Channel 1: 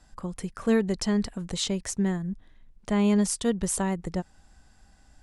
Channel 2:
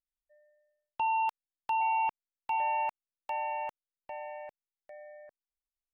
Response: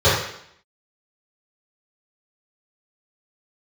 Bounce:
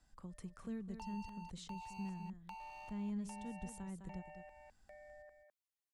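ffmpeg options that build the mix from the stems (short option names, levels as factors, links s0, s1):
-filter_complex "[0:a]volume=0.2,asplit=2[s0][s1];[s1]volume=0.282[s2];[1:a]highpass=f=550:p=1,volume=28.2,asoftclip=hard,volume=0.0355,volume=0.75,asplit=2[s3][s4];[s4]volume=0.376[s5];[s2][s5]amix=inputs=2:normalize=0,aecho=0:1:206:1[s6];[s0][s3][s6]amix=inputs=3:normalize=0,equalizer=f=520:t=o:w=1.5:g=-2,acrossover=split=210[s7][s8];[s8]acompressor=threshold=0.00178:ratio=3[s9];[s7][s9]amix=inputs=2:normalize=0"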